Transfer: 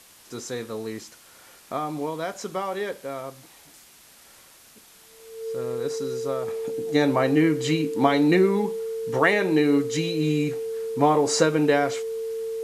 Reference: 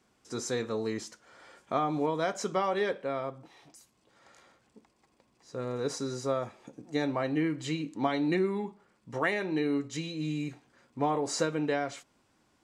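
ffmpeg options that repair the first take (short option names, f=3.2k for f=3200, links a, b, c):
-af "bandreject=f=450:w=30,afwtdn=0.0032,asetnsamples=n=441:p=0,asendcmd='6.48 volume volume -9dB',volume=0dB"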